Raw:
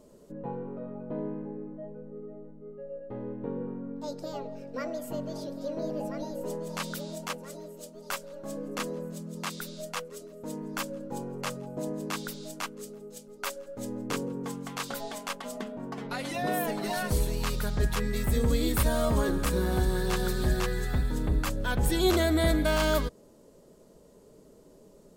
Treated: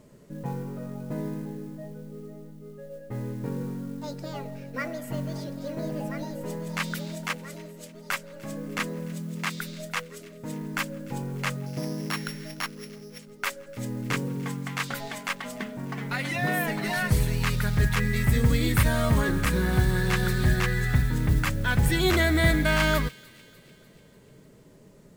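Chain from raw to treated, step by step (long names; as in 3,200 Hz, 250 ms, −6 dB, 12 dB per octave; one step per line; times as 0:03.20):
0:11.66–0:13.19: samples sorted by size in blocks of 8 samples
octave-band graphic EQ 125/500/2,000 Hz +12/−3/+11 dB
noise that follows the level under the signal 25 dB
on a send: delay with a high-pass on its return 296 ms, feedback 57%, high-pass 2,300 Hz, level −19.5 dB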